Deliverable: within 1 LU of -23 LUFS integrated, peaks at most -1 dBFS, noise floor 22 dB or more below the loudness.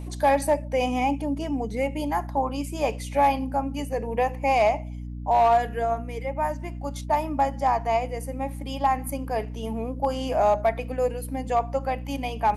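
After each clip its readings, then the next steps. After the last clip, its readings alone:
clipped samples 0.3%; clipping level -13.5 dBFS; hum 60 Hz; highest harmonic 300 Hz; hum level -32 dBFS; loudness -25.5 LUFS; peak level -13.5 dBFS; loudness target -23.0 LUFS
-> clip repair -13.5 dBFS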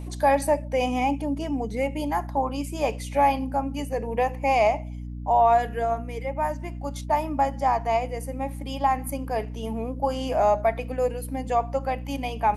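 clipped samples 0.0%; hum 60 Hz; highest harmonic 300 Hz; hum level -32 dBFS
-> de-hum 60 Hz, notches 5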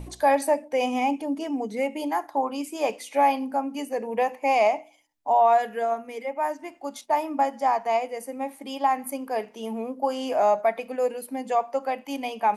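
hum not found; loudness -26.0 LUFS; peak level -10.0 dBFS; loudness target -23.0 LUFS
-> trim +3 dB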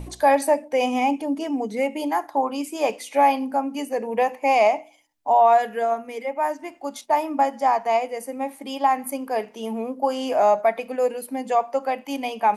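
loudness -23.0 LUFS; peak level -7.0 dBFS; noise floor -50 dBFS

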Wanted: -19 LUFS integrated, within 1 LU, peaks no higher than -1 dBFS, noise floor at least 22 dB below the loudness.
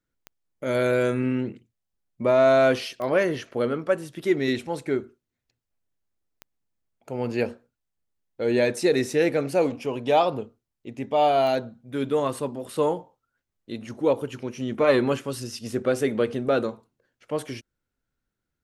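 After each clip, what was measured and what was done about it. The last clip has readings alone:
clicks found 4; loudness -24.5 LUFS; peak level -8.5 dBFS; loudness target -19.0 LUFS
-> de-click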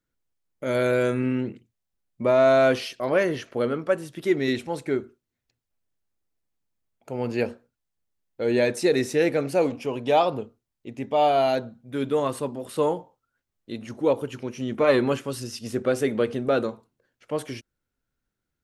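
clicks found 0; loudness -24.5 LUFS; peak level -8.5 dBFS; loudness target -19.0 LUFS
-> trim +5.5 dB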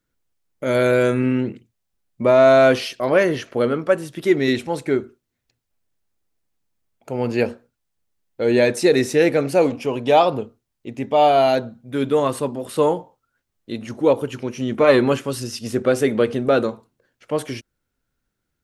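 loudness -19.0 LUFS; peak level -3.0 dBFS; noise floor -78 dBFS

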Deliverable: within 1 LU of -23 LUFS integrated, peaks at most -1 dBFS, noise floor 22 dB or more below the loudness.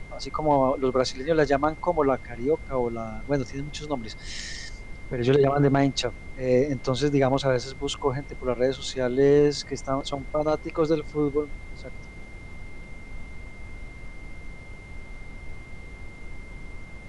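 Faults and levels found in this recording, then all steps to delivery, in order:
steady tone 2.1 kHz; tone level -47 dBFS; noise floor -42 dBFS; noise floor target -48 dBFS; loudness -25.5 LUFS; peak level -8.5 dBFS; loudness target -23.0 LUFS
-> band-stop 2.1 kHz, Q 30; noise print and reduce 6 dB; trim +2.5 dB

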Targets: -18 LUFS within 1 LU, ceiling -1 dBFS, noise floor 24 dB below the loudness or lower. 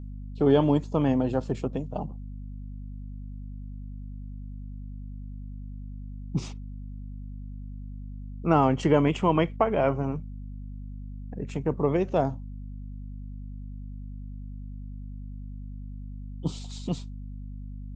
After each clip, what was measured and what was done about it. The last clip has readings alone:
hum 50 Hz; highest harmonic 250 Hz; hum level -35 dBFS; loudness -26.5 LUFS; peak level -7.5 dBFS; loudness target -18.0 LUFS
-> de-hum 50 Hz, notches 5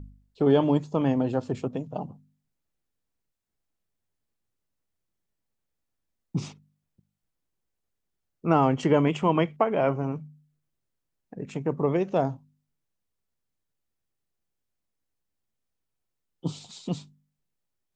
hum not found; loudness -26.5 LUFS; peak level -8.0 dBFS; loudness target -18.0 LUFS
-> trim +8.5 dB; peak limiter -1 dBFS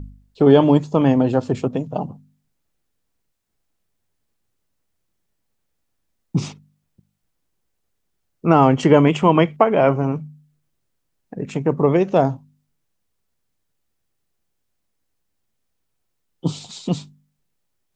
loudness -18.0 LUFS; peak level -1.0 dBFS; noise floor -73 dBFS

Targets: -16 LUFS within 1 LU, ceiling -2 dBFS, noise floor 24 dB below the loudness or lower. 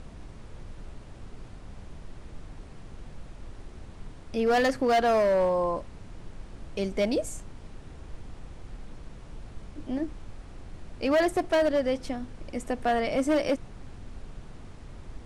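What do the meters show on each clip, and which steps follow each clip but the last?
clipped samples 1.4%; clipping level -19.0 dBFS; noise floor -46 dBFS; noise floor target -51 dBFS; loudness -27.0 LUFS; peak level -19.0 dBFS; loudness target -16.0 LUFS
-> clip repair -19 dBFS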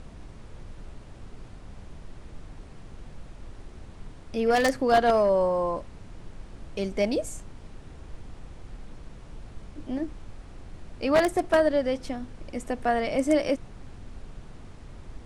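clipped samples 0.0%; noise floor -46 dBFS; noise floor target -50 dBFS
-> noise print and reduce 6 dB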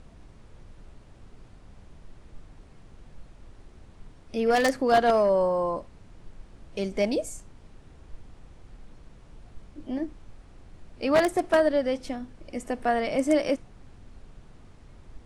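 noise floor -52 dBFS; loudness -26.0 LUFS; peak level -10.0 dBFS; loudness target -16.0 LUFS
-> trim +10 dB; peak limiter -2 dBFS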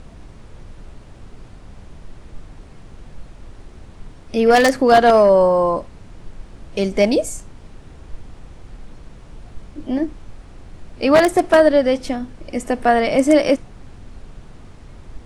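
loudness -16.0 LUFS; peak level -2.0 dBFS; noise floor -42 dBFS

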